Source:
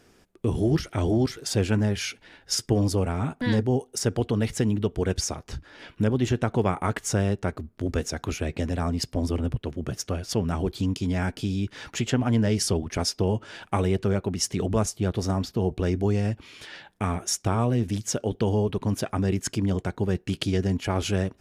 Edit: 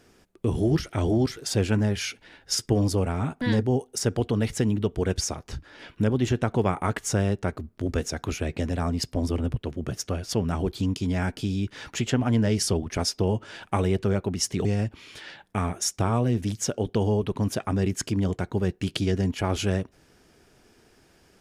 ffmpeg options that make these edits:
ffmpeg -i in.wav -filter_complex "[0:a]asplit=2[link_01][link_02];[link_01]atrim=end=14.652[link_03];[link_02]atrim=start=16.108[link_04];[link_03][link_04]acrossfade=duration=0.004:curve1=hsin:curve2=hsin" out.wav

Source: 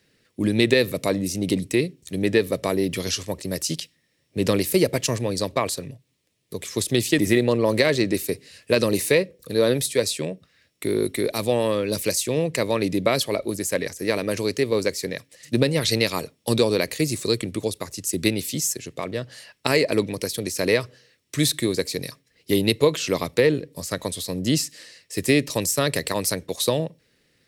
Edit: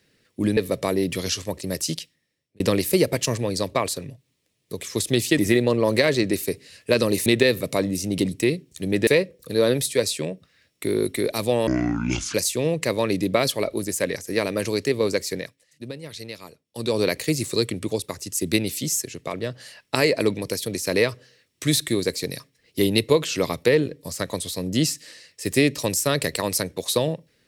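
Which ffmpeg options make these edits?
ffmpeg -i in.wav -filter_complex "[0:a]asplit=9[link_01][link_02][link_03][link_04][link_05][link_06][link_07][link_08][link_09];[link_01]atrim=end=0.572[link_10];[link_02]atrim=start=2.378:end=4.41,asetpts=PTS-STARTPTS,afade=type=out:start_time=1.332:duration=0.7[link_11];[link_03]atrim=start=4.41:end=9.072,asetpts=PTS-STARTPTS,afade=type=in:duration=0.004:curve=hsin[link_12];[link_04]atrim=start=0.568:end=2.382[link_13];[link_05]atrim=start=9.068:end=11.674[link_14];[link_06]atrim=start=11.67:end=12.06,asetpts=PTS-STARTPTS,asetrate=25578,aresample=44100,atrim=end_sample=29653,asetpts=PTS-STARTPTS[link_15];[link_07]atrim=start=12.056:end=15.43,asetpts=PTS-STARTPTS,afade=type=out:start_time=3.044:duration=0.33:curve=qua:silence=0.16788[link_16];[link_08]atrim=start=15.43:end=16.38,asetpts=PTS-STARTPTS,volume=-15.5dB[link_17];[link_09]atrim=start=16.38,asetpts=PTS-STARTPTS,afade=type=in:duration=0.33:curve=qua:silence=0.16788[link_18];[link_11][link_12]concat=n=2:v=0:a=1[link_19];[link_10][link_19]acrossfade=duration=0.004:curve1=hsin:curve2=hsin[link_20];[link_20][link_13]acrossfade=duration=0.004:curve1=hsin:curve2=hsin[link_21];[link_21][link_14]acrossfade=duration=0.004:curve1=hsin:curve2=hsin[link_22];[link_22][link_15]acrossfade=duration=0.004:curve1=hsin:curve2=hsin[link_23];[link_16][link_17][link_18]concat=n=3:v=0:a=1[link_24];[link_23][link_24]acrossfade=duration=0.004:curve1=hsin:curve2=hsin" out.wav

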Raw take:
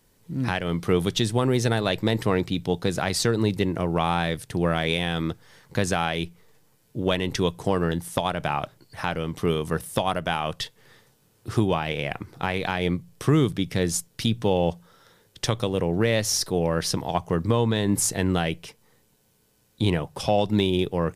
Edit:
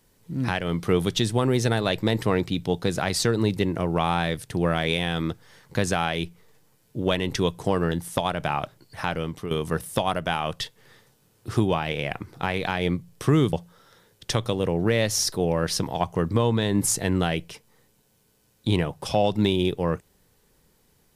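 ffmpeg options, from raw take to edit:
ffmpeg -i in.wav -filter_complex "[0:a]asplit=3[link_01][link_02][link_03];[link_01]atrim=end=9.51,asetpts=PTS-STARTPTS,afade=type=out:start_time=9.24:duration=0.27:silence=0.237137[link_04];[link_02]atrim=start=9.51:end=13.532,asetpts=PTS-STARTPTS,afade=type=in:duration=0.004:curve=hsin:silence=0.237137[link_05];[link_03]atrim=start=14.668[link_06];[link_04][link_05]concat=n=2:v=0:a=1[link_07];[link_07][link_06]acrossfade=duration=0.004:curve1=hsin:curve2=hsin" out.wav

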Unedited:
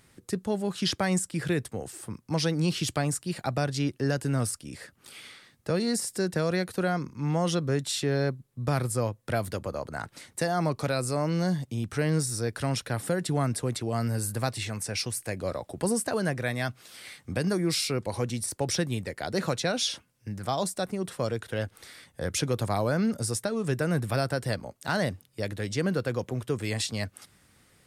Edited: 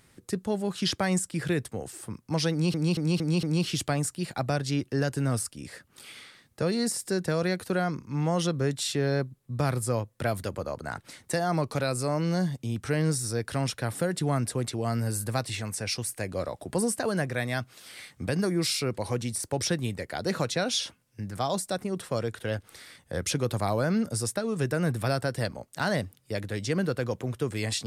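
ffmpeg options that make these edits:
ffmpeg -i in.wav -filter_complex "[0:a]asplit=5[link_01][link_02][link_03][link_04][link_05];[link_01]atrim=end=2.742[link_06];[link_02]atrim=start=2.508:end=2.742[link_07];[link_03]atrim=start=2.508:end=2.742[link_08];[link_04]atrim=start=2.508:end=2.742[link_09];[link_05]atrim=start=2.508[link_10];[link_06][link_07]acrossfade=duration=0.004:curve1=hsin:curve2=hsin[link_11];[link_11][link_08]acrossfade=duration=0.004:curve1=hsin:curve2=hsin[link_12];[link_12][link_09]acrossfade=duration=0.004:curve1=hsin:curve2=hsin[link_13];[link_13][link_10]acrossfade=duration=0.004:curve1=hsin:curve2=hsin" out.wav

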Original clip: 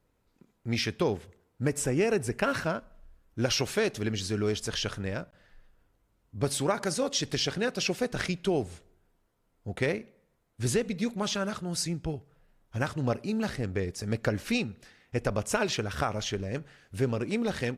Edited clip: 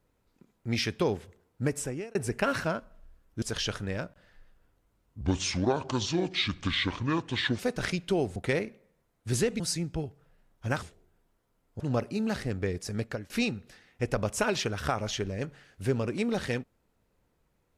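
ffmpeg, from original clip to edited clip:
ffmpeg -i in.wav -filter_complex "[0:a]asplit=10[link_01][link_02][link_03][link_04][link_05][link_06][link_07][link_08][link_09][link_10];[link_01]atrim=end=2.15,asetpts=PTS-STARTPTS,afade=type=out:start_time=1.63:duration=0.52[link_11];[link_02]atrim=start=2.15:end=3.422,asetpts=PTS-STARTPTS,afade=type=in:duration=0.004:curve=hsin[link_12];[link_03]atrim=start=4.588:end=6.384[link_13];[link_04]atrim=start=6.38:end=7.95,asetpts=PTS-STARTPTS,asetrate=29106,aresample=44100[link_14];[link_05]atrim=start=7.946:end=8.722[link_15];[link_06]atrim=start=9.688:end=10.932[link_16];[link_07]atrim=start=11.698:end=12.932[link_17];[link_08]atrim=start=8.718:end=9.692[link_18];[link_09]atrim=start=12.928:end=14.43,asetpts=PTS-STARTPTS,afade=type=out:start_time=1.102:duration=0.4:silence=0.0944061[link_19];[link_10]atrim=start=14.43,asetpts=PTS-STARTPTS,afade=type=in:duration=0.004:curve=hsin:silence=0.0944061[link_20];[link_11][link_12]concat=n=2:v=0:a=1[link_21];[link_21][link_13]acrossfade=duration=0.004:curve1=hsin:curve2=hsin[link_22];[link_22][link_14]acrossfade=duration=0.004:curve1=hsin:curve2=hsin[link_23];[link_23][link_15]acrossfade=duration=0.004:curve1=hsin:curve2=hsin[link_24];[link_24][link_16]acrossfade=duration=0.004:curve1=hsin:curve2=hsin[link_25];[link_25][link_17]acrossfade=duration=0.004:curve1=hsin:curve2=hsin[link_26];[link_26][link_18]acrossfade=duration=0.004:curve1=hsin:curve2=hsin[link_27];[link_19][link_20]concat=n=2:v=0:a=1[link_28];[link_27][link_28]acrossfade=duration=0.004:curve1=hsin:curve2=hsin" out.wav

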